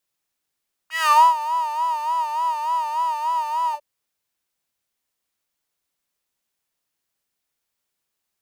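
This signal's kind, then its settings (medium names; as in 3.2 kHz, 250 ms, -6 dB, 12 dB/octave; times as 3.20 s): synth patch with vibrato D#5, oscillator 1 saw, oscillator 2 square, interval +7 st, oscillator 2 level -4.5 dB, sub -16.5 dB, filter highpass, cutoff 560 Hz, Q 9.8, filter envelope 2 oct, attack 154 ms, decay 0.28 s, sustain -17 dB, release 0.07 s, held 2.83 s, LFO 3.4 Hz, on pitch 84 cents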